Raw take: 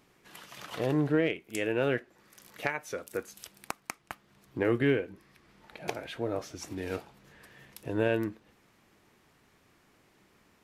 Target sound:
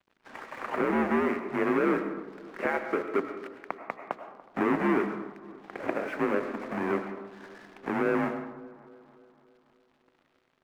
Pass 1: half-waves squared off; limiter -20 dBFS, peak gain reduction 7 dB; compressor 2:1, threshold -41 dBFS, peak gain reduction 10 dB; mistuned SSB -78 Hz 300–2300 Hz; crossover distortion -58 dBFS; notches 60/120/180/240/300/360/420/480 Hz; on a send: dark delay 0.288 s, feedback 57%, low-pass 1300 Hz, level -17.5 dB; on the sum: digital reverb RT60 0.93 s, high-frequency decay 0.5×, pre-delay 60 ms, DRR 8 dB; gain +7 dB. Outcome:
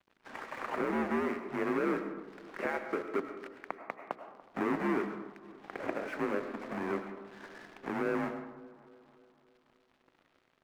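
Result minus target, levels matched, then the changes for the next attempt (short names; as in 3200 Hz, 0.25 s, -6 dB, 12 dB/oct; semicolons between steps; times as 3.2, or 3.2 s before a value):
compressor: peak gain reduction +5.5 dB
change: compressor 2:1, threshold -30 dBFS, peak gain reduction 4.5 dB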